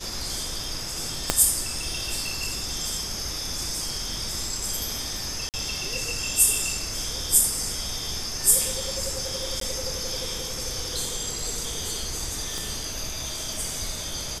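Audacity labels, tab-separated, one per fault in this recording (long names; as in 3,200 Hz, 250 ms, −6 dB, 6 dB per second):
1.300000	1.300000	click −3 dBFS
5.490000	5.540000	drop-out 48 ms
9.600000	9.610000	drop-out 13 ms
12.580000	12.580000	click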